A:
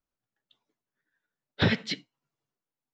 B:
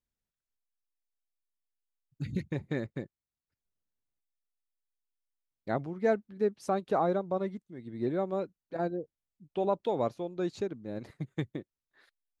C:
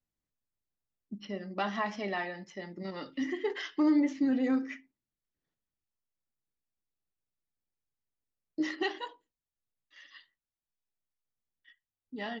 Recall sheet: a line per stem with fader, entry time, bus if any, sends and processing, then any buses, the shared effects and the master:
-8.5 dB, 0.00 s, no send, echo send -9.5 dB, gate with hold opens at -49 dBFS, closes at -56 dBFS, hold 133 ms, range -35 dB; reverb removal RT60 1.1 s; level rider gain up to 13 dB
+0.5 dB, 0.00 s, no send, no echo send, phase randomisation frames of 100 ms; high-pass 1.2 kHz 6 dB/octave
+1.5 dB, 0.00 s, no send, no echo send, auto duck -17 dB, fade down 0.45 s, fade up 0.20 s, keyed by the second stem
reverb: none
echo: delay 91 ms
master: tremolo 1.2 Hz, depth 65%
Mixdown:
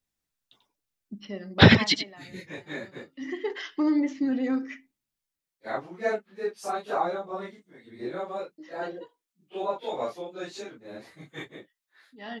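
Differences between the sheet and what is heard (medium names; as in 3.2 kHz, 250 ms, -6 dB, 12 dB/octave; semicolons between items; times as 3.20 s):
stem A -8.5 dB -> 0.0 dB; stem B +0.5 dB -> +7.0 dB; master: missing tremolo 1.2 Hz, depth 65%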